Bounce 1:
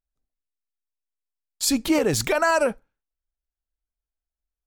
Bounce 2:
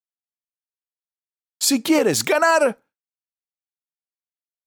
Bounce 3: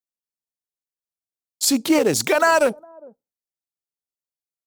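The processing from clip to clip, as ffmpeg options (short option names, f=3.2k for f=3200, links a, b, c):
-af "agate=range=-33dB:threshold=-43dB:ratio=3:detection=peak,highpass=190,volume=4dB"
-filter_complex "[0:a]acrossover=split=890|3500[a][b][c];[a]aecho=1:1:408:0.0708[d];[b]aeval=exprs='val(0)*gte(abs(val(0)),0.0299)':c=same[e];[d][e][c]amix=inputs=3:normalize=0"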